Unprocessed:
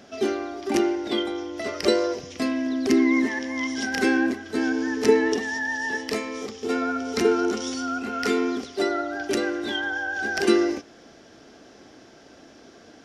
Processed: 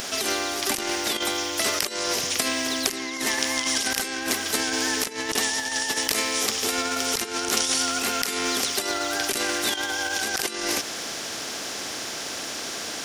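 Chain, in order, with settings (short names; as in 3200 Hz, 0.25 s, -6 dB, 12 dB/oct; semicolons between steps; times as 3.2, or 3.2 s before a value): RIAA curve recording; negative-ratio compressor -28 dBFS, ratio -0.5; spectral compressor 2:1; gain +7.5 dB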